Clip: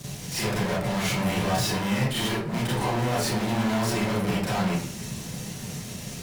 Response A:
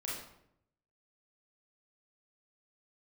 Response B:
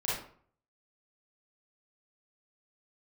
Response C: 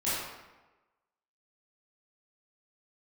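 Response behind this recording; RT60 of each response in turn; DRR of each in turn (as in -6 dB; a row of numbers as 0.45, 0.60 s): B; 0.75, 0.55, 1.1 s; -6.0, -8.5, -12.0 dB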